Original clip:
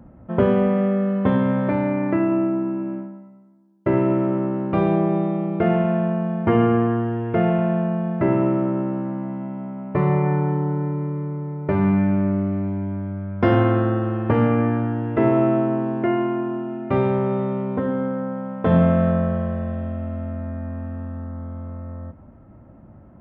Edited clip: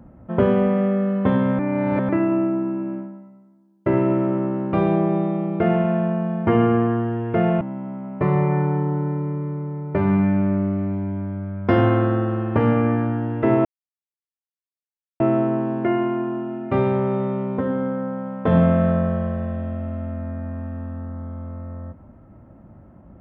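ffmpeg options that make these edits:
ffmpeg -i in.wav -filter_complex "[0:a]asplit=5[link_01][link_02][link_03][link_04][link_05];[link_01]atrim=end=1.592[link_06];[link_02]atrim=start=1.588:end=2.092,asetpts=PTS-STARTPTS,areverse[link_07];[link_03]atrim=start=2.088:end=7.612[link_08];[link_04]atrim=start=9.348:end=15.39,asetpts=PTS-STARTPTS,afade=type=out:start_time=6.038:duration=0.004:curve=hsin,apad=pad_dur=1.55[link_09];[link_05]atrim=start=15.39,asetpts=PTS-STARTPTS,afade=type=in:duration=0.004:curve=hsin[link_10];[link_06][link_07]acrossfade=duration=0.004:curve1=hsin:curve2=hsin[link_11];[link_11][link_08]acrossfade=duration=0.004:curve1=hsin:curve2=hsin[link_12];[link_09][link_10]concat=n=2:v=0:a=1[link_13];[link_12][link_13]acrossfade=duration=0.004:curve1=hsin:curve2=hsin" out.wav

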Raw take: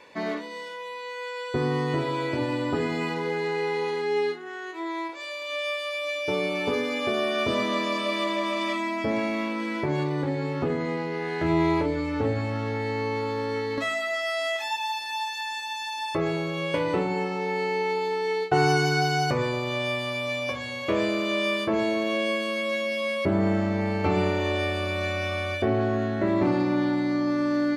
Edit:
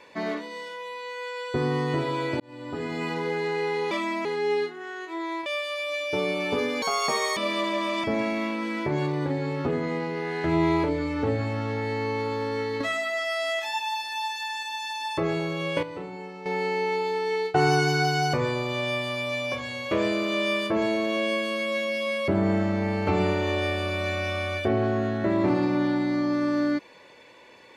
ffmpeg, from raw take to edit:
ffmpeg -i in.wav -filter_complex "[0:a]asplit=10[link_01][link_02][link_03][link_04][link_05][link_06][link_07][link_08][link_09][link_10];[link_01]atrim=end=2.4,asetpts=PTS-STARTPTS,afade=type=out:start_time=2.396:duration=0.004:curve=hsin[link_11];[link_02]atrim=start=2.4:end=3.912,asetpts=PTS-STARTPTS,afade=type=in:duration=0.76[link_12];[link_03]atrim=start=8.668:end=9.012[link_13];[link_04]atrim=start=3.908:end=5.122[link_14];[link_05]atrim=start=5.608:end=6.974[link_15];[link_06]atrim=start=6.97:end=8,asetpts=PTS-STARTPTS,asetrate=82908,aresample=44100,atrim=end_sample=24161,asetpts=PTS-STARTPTS[link_16];[link_07]atrim=start=7.996:end=8.672[link_17];[link_08]atrim=start=9.008:end=16.802[link_18];[link_09]atrim=start=16.798:end=17.432,asetpts=PTS-STARTPTS,volume=-11dB[link_19];[link_10]atrim=start=17.428[link_20];[link_11][link_12]concat=n=2:v=0:a=1[link_21];[link_21][link_13]acrossfade=duration=0.004:curve1=hsin:curve2=hsin[link_22];[link_22][link_14]acrossfade=duration=0.004:curve1=hsin:curve2=hsin[link_23];[link_23][link_15]acrossfade=duration=0.004:curve1=hsin:curve2=hsin[link_24];[link_24][link_16]acrossfade=duration=0.004:curve1=hsin:curve2=hsin[link_25];[link_25][link_17]acrossfade=duration=0.004:curve1=hsin:curve2=hsin[link_26];[link_26][link_18]acrossfade=duration=0.004:curve1=hsin:curve2=hsin[link_27];[link_27][link_19]acrossfade=duration=0.004:curve1=hsin:curve2=hsin[link_28];[link_28][link_20]acrossfade=duration=0.004:curve1=hsin:curve2=hsin" out.wav

